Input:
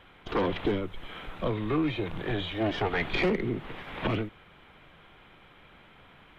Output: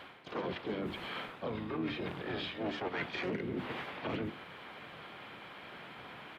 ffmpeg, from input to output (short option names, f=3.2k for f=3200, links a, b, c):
-filter_complex "[0:a]highpass=170,bandreject=f=50:t=h:w=6,bandreject=f=100:t=h:w=6,bandreject=f=150:t=h:w=6,bandreject=f=200:t=h:w=6,bandreject=f=250:t=h:w=6,bandreject=f=300:t=h:w=6,bandreject=f=350:t=h:w=6,bandreject=f=400:t=h:w=6,areverse,acompressor=threshold=-44dB:ratio=4,areverse,asplit=4[a][b][c][d];[b]asetrate=22050,aresample=44100,atempo=2,volume=-12dB[e];[c]asetrate=33038,aresample=44100,atempo=1.33484,volume=-6dB[f];[d]asetrate=58866,aresample=44100,atempo=0.749154,volume=-12dB[g];[a][e][f][g]amix=inputs=4:normalize=0,volume=5.5dB"